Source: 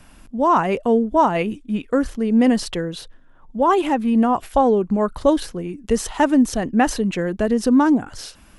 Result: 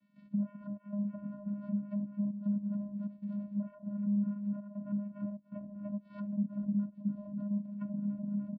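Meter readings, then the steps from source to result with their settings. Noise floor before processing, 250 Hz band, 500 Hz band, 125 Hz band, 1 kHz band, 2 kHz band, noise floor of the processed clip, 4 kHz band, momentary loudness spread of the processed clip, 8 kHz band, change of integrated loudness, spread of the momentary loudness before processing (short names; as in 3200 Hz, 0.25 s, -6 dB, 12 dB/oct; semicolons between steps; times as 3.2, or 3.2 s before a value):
-49 dBFS, -15.0 dB, -31.5 dB, -8.0 dB, under -40 dB, under -35 dB, -61 dBFS, under -40 dB, 8 LU, under -40 dB, -18.0 dB, 11 LU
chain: inharmonic rescaling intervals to 124%; resonant high shelf 3600 Hz -8.5 dB, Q 3; feedback echo 0.294 s, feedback 50%, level -12.5 dB; compressor 3:1, threshold -37 dBFS, peak gain reduction 18.5 dB; bell 330 Hz +4.5 dB 1.1 oct; notch 560 Hz, Q 12; limiter -26.5 dBFS, peak gain reduction 7 dB; step gate ".xxxx.xxxxxxxxx" 98 bpm -12 dB; treble ducked by the level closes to 500 Hz, closed at -31.5 dBFS; vocoder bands 8, square 204 Hz; gain +1.5 dB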